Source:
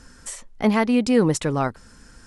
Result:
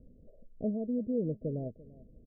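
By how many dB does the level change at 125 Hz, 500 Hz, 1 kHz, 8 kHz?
−11.5 dB, −13.0 dB, below −25 dB, below −40 dB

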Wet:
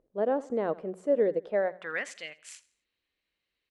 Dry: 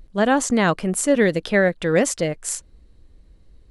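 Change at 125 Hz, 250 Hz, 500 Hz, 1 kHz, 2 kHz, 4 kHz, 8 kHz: −22.0, −16.0, −7.5, −12.5, −14.0, −16.5, −24.5 decibels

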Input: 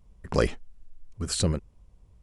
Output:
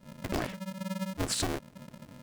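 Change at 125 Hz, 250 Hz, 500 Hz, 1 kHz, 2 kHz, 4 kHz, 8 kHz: −7.5, −2.0, −8.0, −1.0, −1.5, −2.0, −2.0 decibels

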